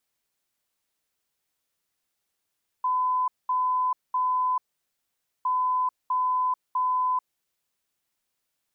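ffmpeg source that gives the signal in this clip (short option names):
-f lavfi -i "aevalsrc='0.0841*sin(2*PI*1010*t)*clip(min(mod(mod(t,2.61),0.65),0.44-mod(mod(t,2.61),0.65))/0.005,0,1)*lt(mod(t,2.61),1.95)':d=5.22:s=44100"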